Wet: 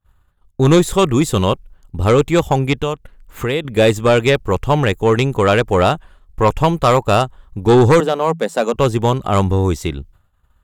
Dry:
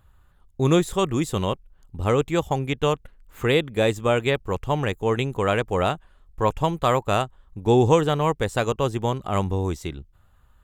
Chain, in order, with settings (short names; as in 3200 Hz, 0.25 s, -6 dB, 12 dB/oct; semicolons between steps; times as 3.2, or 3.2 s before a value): expander -46 dBFS; 2.79–3.65 compressor 2:1, threshold -33 dBFS, peak gain reduction 10 dB; sine folder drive 6 dB, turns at -5 dBFS; 8–8.74 rippled Chebyshev high-pass 160 Hz, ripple 6 dB